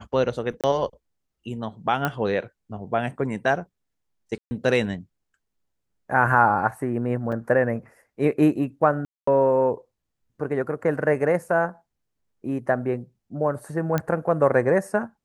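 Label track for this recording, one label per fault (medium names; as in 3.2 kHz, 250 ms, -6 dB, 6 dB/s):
0.610000	0.640000	dropout 27 ms
2.050000	2.050000	pop -10 dBFS
4.380000	4.510000	dropout 130 ms
7.320000	7.330000	dropout 5 ms
9.050000	9.270000	dropout 224 ms
13.980000	13.980000	pop -11 dBFS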